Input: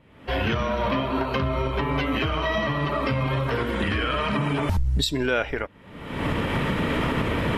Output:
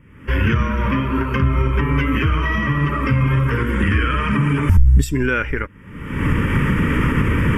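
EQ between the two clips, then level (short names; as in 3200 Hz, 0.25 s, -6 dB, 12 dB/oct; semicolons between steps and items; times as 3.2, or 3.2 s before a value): low shelf 160 Hz +6 dB; fixed phaser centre 1700 Hz, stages 4; +6.5 dB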